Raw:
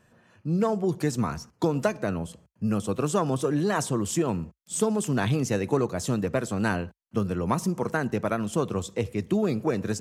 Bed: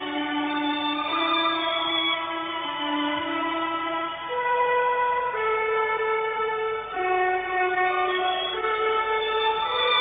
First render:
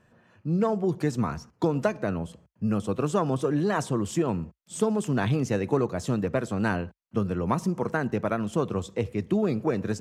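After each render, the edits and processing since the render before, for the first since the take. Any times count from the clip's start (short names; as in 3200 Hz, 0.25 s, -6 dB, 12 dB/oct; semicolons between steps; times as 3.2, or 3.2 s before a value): high shelf 5200 Hz -10 dB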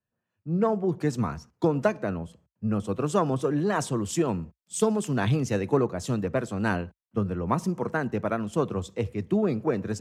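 three-band expander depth 70%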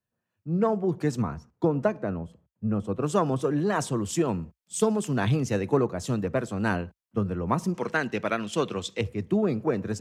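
1.22–3.03 high shelf 2000 Hz -10 dB; 7.74–9.01 weighting filter D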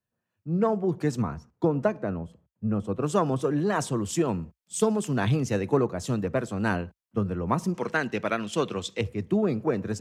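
nothing audible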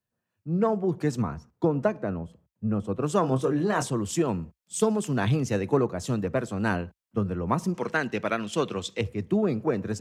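3.21–3.9 doubler 23 ms -7.5 dB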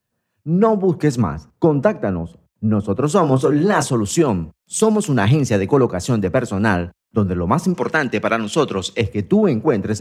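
gain +9.5 dB; limiter -3 dBFS, peak gain reduction 2.5 dB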